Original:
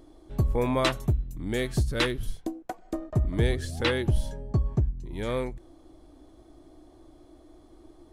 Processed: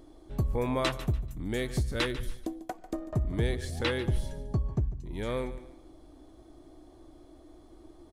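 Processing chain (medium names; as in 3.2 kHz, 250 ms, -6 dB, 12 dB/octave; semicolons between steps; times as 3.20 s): feedback delay 145 ms, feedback 30%, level -16 dB; in parallel at -1 dB: compression, threshold -33 dBFS, peak gain reduction 13.5 dB; on the sum: trim -6 dB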